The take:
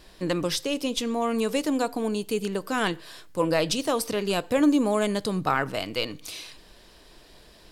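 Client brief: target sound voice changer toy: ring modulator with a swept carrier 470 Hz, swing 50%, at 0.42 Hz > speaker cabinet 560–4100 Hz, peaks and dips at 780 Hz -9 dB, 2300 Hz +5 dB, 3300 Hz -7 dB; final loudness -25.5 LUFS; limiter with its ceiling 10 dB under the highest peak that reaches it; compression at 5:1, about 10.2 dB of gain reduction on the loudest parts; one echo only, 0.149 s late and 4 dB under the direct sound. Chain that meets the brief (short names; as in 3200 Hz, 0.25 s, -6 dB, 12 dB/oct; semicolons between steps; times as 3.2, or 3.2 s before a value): compressor 5:1, threshold -28 dBFS; limiter -26 dBFS; echo 0.149 s -4 dB; ring modulator with a swept carrier 470 Hz, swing 50%, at 0.42 Hz; speaker cabinet 560–4100 Hz, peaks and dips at 780 Hz -9 dB, 2300 Hz +5 dB, 3300 Hz -7 dB; gain +16.5 dB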